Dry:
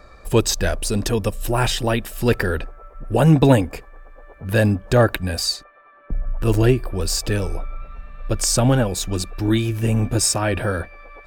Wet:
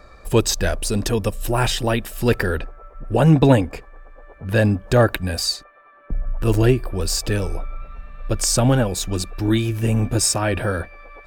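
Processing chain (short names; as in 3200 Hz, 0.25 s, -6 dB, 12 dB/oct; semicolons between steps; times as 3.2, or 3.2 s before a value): 2.58–4.74 high shelf 9700 Hz -10 dB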